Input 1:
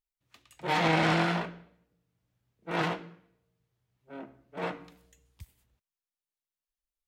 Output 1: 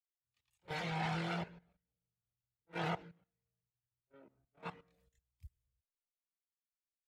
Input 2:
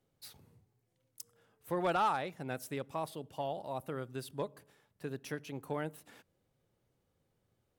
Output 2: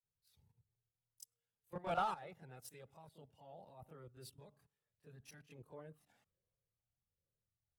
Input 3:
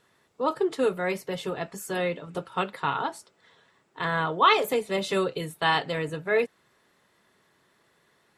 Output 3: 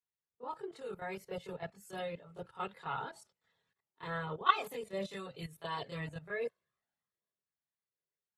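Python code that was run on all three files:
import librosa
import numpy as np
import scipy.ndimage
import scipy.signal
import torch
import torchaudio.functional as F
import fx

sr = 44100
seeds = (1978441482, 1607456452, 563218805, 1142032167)

y = fx.level_steps(x, sr, step_db=16)
y = fx.chorus_voices(y, sr, voices=6, hz=0.32, base_ms=25, depth_ms=1.3, mix_pct=70)
y = fx.band_widen(y, sr, depth_pct=40)
y = F.gain(torch.from_numpy(y), -5.5).numpy()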